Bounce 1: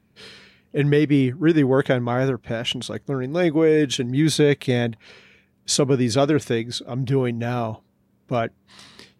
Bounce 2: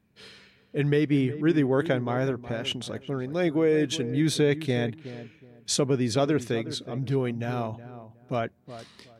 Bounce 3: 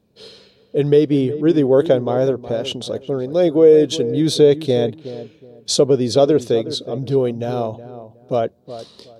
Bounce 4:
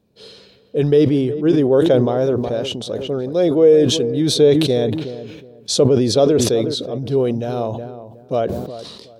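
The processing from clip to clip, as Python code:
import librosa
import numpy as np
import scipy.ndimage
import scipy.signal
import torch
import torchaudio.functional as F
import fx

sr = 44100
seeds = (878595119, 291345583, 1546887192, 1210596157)

y1 = fx.echo_filtered(x, sr, ms=368, feedback_pct=25, hz=1400.0, wet_db=-13.0)
y1 = F.gain(torch.from_numpy(y1), -5.5).numpy()
y2 = fx.graphic_eq(y1, sr, hz=(500, 2000, 4000), db=(11, -11, 8))
y2 = F.gain(torch.from_numpy(y2), 3.5).numpy()
y3 = fx.sustainer(y2, sr, db_per_s=41.0)
y3 = F.gain(torch.from_numpy(y3), -1.0).numpy()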